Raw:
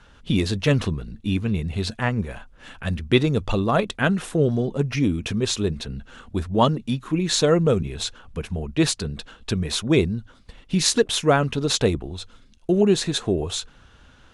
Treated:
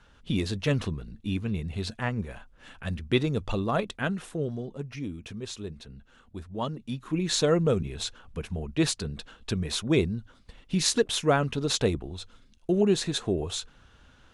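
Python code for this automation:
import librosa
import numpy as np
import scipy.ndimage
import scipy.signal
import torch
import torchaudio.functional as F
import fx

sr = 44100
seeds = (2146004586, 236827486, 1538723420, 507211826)

y = fx.gain(x, sr, db=fx.line((3.75, -6.5), (4.9, -14.0), (6.6, -14.0), (7.18, -5.0)))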